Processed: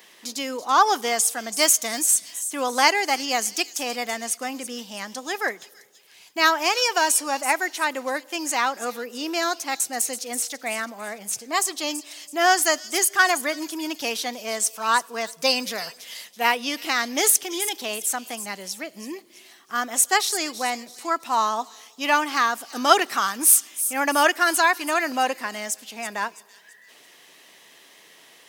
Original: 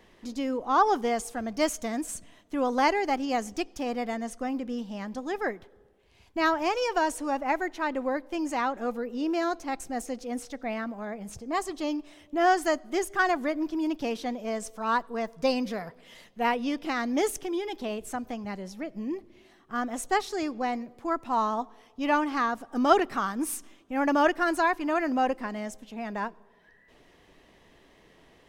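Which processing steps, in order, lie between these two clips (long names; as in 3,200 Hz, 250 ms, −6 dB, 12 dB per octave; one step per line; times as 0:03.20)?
high-pass filter 120 Hz 24 dB per octave
spectral tilt +4.5 dB per octave
delay with a high-pass on its return 331 ms, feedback 36%, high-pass 4,400 Hz, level −10 dB
level +5 dB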